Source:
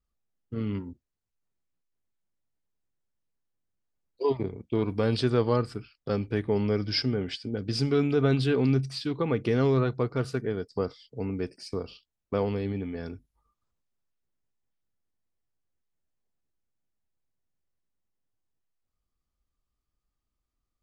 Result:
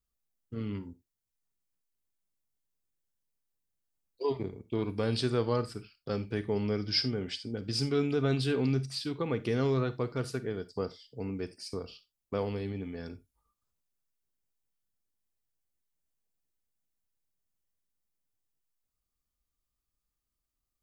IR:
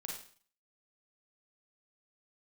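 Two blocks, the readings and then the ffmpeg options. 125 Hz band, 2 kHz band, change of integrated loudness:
−5.0 dB, −4.0 dB, −4.5 dB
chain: -filter_complex "[0:a]highshelf=frequency=4700:gain=8.5,asplit=2[link_01][link_02];[1:a]atrim=start_sample=2205,afade=type=out:start_time=0.14:duration=0.01,atrim=end_sample=6615,highshelf=frequency=7100:gain=10.5[link_03];[link_02][link_03]afir=irnorm=-1:irlink=0,volume=-9.5dB[link_04];[link_01][link_04]amix=inputs=2:normalize=0,volume=-6.5dB"

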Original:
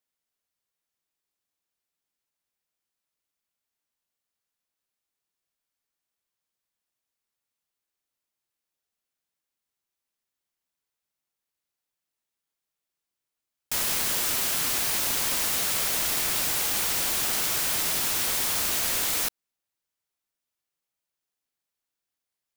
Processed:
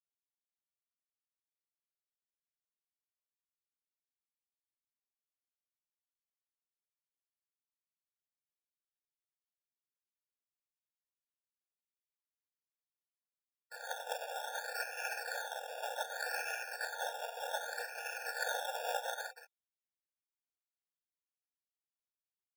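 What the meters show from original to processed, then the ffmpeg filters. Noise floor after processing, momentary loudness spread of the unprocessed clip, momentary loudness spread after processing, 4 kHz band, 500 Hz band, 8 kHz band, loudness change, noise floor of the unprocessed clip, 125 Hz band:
below −85 dBFS, 1 LU, 6 LU, −17.0 dB, −3.0 dB, −22.5 dB, −16.5 dB, below −85 dBFS, below −40 dB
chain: -filter_complex "[0:a]alimiter=limit=-24dB:level=0:latency=1:release=153,agate=range=-28dB:threshold=-30dB:ratio=16:detection=peak,asplit=2[link_01][link_02];[link_02]aecho=0:1:176|352|528|704:0.211|0.0972|0.0447|0.0206[link_03];[link_01][link_03]amix=inputs=2:normalize=0,acrusher=bits=9:mix=0:aa=0.000001,equalizer=frequency=2400:width_type=o:width=0.32:gain=13,lowpass=frequency=3200:width_type=q:width=0.5098,lowpass=frequency=3200:width_type=q:width=0.6013,lowpass=frequency=3200:width_type=q:width=0.9,lowpass=frequency=3200:width_type=q:width=2.563,afreqshift=-3800,aecho=1:1:3.2:0.8,acrusher=samples=16:mix=1:aa=0.000001:lfo=1:lforange=9.6:lforate=0.65,dynaudnorm=framelen=150:gausssize=11:maxgain=9dB,aeval=exprs='val(0)*sin(2*PI*120*n/s)':channel_layout=same,afftfilt=real='re*eq(mod(floor(b*sr/1024/470),2),1)':imag='im*eq(mod(floor(b*sr/1024/470),2),1)':win_size=1024:overlap=0.75,volume=12dB"

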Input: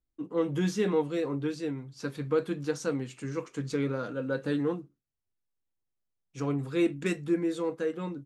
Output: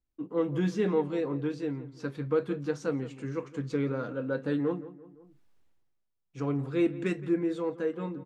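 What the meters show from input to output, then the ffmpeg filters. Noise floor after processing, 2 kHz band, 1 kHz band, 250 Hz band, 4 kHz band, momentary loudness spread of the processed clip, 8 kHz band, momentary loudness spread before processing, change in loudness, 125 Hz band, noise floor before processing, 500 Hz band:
−79 dBFS, −2.0 dB, −0.5 dB, 0.0 dB, −5.0 dB, 8 LU, can't be measured, 8 LU, 0.0 dB, 0.0 dB, −83 dBFS, 0.0 dB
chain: -filter_complex "[0:a]asplit=2[link_01][link_02];[link_02]adelay=170,lowpass=frequency=1800:poles=1,volume=-15dB,asplit=2[link_03][link_04];[link_04]adelay=170,lowpass=frequency=1800:poles=1,volume=0.36,asplit=2[link_05][link_06];[link_06]adelay=170,lowpass=frequency=1800:poles=1,volume=0.36[link_07];[link_01][link_03][link_05][link_07]amix=inputs=4:normalize=0,areverse,acompressor=mode=upward:threshold=-46dB:ratio=2.5,areverse,lowpass=frequency=2400:poles=1"

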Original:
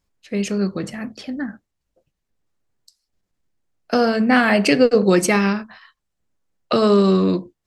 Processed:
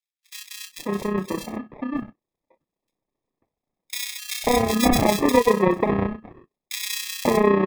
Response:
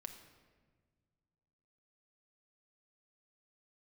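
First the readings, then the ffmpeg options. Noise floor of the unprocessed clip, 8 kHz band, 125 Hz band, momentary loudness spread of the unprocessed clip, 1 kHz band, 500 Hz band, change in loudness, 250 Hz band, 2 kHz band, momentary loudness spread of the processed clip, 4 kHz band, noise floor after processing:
−78 dBFS, +1.5 dB, −4.5 dB, 14 LU, −0.5 dB, −3.5 dB, −5.0 dB, −5.0 dB, −7.0 dB, 17 LU, −1.0 dB, below −85 dBFS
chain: -filter_complex "[0:a]acrossover=split=190 3000:gain=0.0708 1 0.0891[link_01][link_02][link_03];[link_01][link_02][link_03]amix=inputs=3:normalize=0,asplit=2[link_04][link_05];[link_05]acompressor=threshold=-29dB:ratio=6,volume=-3dB[link_06];[link_04][link_06]amix=inputs=2:normalize=0,tremolo=f=31:d=0.621,acrusher=samples=30:mix=1:aa=0.000001,acrossover=split=2300[link_07][link_08];[link_07]adelay=540[link_09];[link_09][link_08]amix=inputs=2:normalize=0"

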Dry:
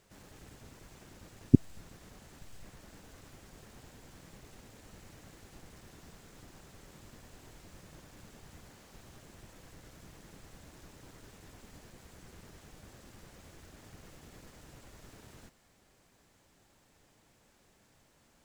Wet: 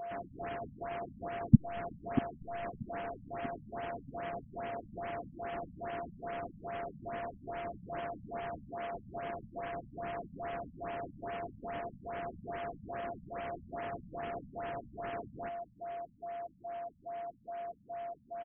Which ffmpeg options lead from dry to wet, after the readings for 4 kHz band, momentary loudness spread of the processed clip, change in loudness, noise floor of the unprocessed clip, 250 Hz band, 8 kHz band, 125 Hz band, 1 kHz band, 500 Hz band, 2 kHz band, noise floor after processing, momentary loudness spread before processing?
+0.5 dB, 2 LU, −12.5 dB, −67 dBFS, 0.0 dB, below −25 dB, +1.5 dB, +20.5 dB, +13.0 dB, +11.5 dB, −61 dBFS, 0 LU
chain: -filter_complex "[0:a]asplit=2[link_01][link_02];[link_02]highpass=frequency=720:poles=1,volume=22dB,asoftclip=type=tanh:threshold=-2.5dB[link_03];[link_01][link_03]amix=inputs=2:normalize=0,lowpass=frequency=2600:poles=1,volume=-6dB,aeval=exprs='val(0)+0.00891*sin(2*PI*690*n/s)':channel_layout=same,asplit=2[link_04][link_05];[link_05]acrusher=bits=3:mix=0:aa=0.5,volume=-12dB[link_06];[link_04][link_06]amix=inputs=2:normalize=0,asplit=2[link_07][link_08];[link_08]adelay=636,lowpass=frequency=2000:poles=1,volume=-17dB,asplit=2[link_09][link_10];[link_10]adelay=636,lowpass=frequency=2000:poles=1,volume=0.49,asplit=2[link_11][link_12];[link_12]adelay=636,lowpass=frequency=2000:poles=1,volume=0.49,asplit=2[link_13][link_14];[link_14]adelay=636,lowpass=frequency=2000:poles=1,volume=0.49[link_15];[link_07][link_09][link_11][link_13][link_15]amix=inputs=5:normalize=0,afftfilt=real='re*lt(b*sr/1024,240*pow(3400/240,0.5+0.5*sin(2*PI*2.4*pts/sr)))':imag='im*lt(b*sr/1024,240*pow(3400/240,0.5+0.5*sin(2*PI*2.4*pts/sr)))':win_size=1024:overlap=0.75,volume=2.5dB"

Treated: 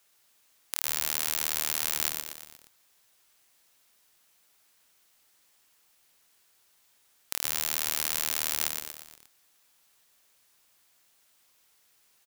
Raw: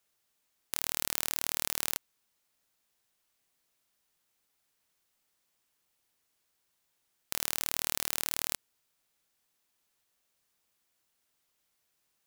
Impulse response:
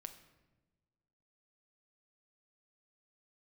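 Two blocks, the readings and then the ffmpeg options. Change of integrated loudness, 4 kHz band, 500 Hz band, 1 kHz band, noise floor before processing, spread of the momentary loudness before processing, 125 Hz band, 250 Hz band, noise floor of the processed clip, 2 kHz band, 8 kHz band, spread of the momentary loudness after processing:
+4.0 dB, +4.5 dB, +2.0 dB, +3.5 dB, −78 dBFS, 7 LU, 0.0 dB, +0.5 dB, −66 dBFS, +4.5 dB, +4.5 dB, 10 LU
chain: -filter_complex "[0:a]lowshelf=frequency=460:gain=-7.5,asplit=2[link_01][link_02];[link_02]asplit=6[link_03][link_04][link_05][link_06][link_07][link_08];[link_03]adelay=118,afreqshift=-150,volume=-6dB[link_09];[link_04]adelay=236,afreqshift=-300,volume=-11.7dB[link_10];[link_05]adelay=354,afreqshift=-450,volume=-17.4dB[link_11];[link_06]adelay=472,afreqshift=-600,volume=-23dB[link_12];[link_07]adelay=590,afreqshift=-750,volume=-28.7dB[link_13];[link_08]adelay=708,afreqshift=-900,volume=-34.4dB[link_14];[link_09][link_10][link_11][link_12][link_13][link_14]amix=inputs=6:normalize=0[link_15];[link_01][link_15]amix=inputs=2:normalize=0,alimiter=level_in=11.5dB:limit=-1dB:release=50:level=0:latency=1,volume=-1dB"

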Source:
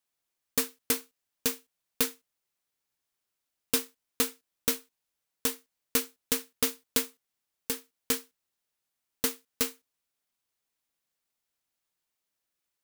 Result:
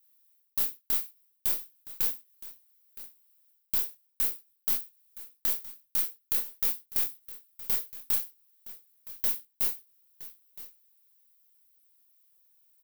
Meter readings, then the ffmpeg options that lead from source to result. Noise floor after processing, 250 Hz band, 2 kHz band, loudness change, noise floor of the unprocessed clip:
−74 dBFS, −16.5 dB, −9.5 dB, +2.0 dB, −85 dBFS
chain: -filter_complex "[0:a]acrossover=split=490|4600[link_01][link_02][link_03];[link_01]acompressor=threshold=-36dB:ratio=4[link_04];[link_02]acompressor=threshold=-41dB:ratio=4[link_05];[link_03]acompressor=threshold=-35dB:ratio=4[link_06];[link_04][link_05][link_06]amix=inputs=3:normalize=0,equalizer=frequency=7100:width_type=o:width=0.42:gain=-8.5,areverse,acompressor=threshold=-41dB:ratio=10,areverse,aemphasis=mode=production:type=riaa,aeval=exprs='0.631*(cos(1*acos(clip(val(0)/0.631,-1,1)))-cos(1*PI/2))+0.2*(cos(3*acos(clip(val(0)/0.631,-1,1)))-cos(3*PI/2))+0.141*(cos(5*acos(clip(val(0)/0.631,-1,1)))-cos(5*PI/2))+0.0398*(cos(6*acos(clip(val(0)/0.631,-1,1)))-cos(6*PI/2))+0.00501*(cos(8*acos(clip(val(0)/0.631,-1,1)))-cos(8*PI/2))':channel_layout=same,flanger=delay=22.5:depth=7.1:speed=0.43,asplit=2[link_07][link_08];[link_08]aecho=0:1:967:0.15[link_09];[link_07][link_09]amix=inputs=2:normalize=0"

